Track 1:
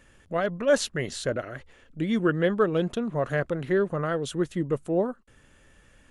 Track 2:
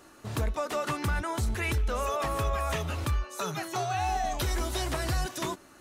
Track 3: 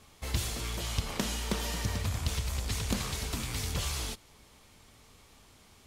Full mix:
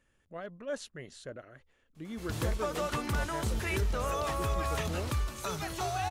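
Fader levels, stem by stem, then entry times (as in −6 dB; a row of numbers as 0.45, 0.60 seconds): −15.5, −3.0, −10.5 decibels; 0.00, 2.05, 1.95 seconds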